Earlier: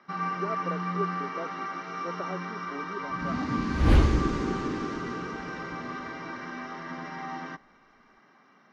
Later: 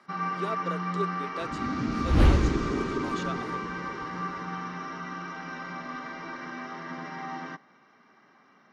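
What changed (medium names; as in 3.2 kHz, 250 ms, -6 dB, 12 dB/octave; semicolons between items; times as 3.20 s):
speech: remove steep low-pass 1.4 kHz; second sound: entry -1.70 s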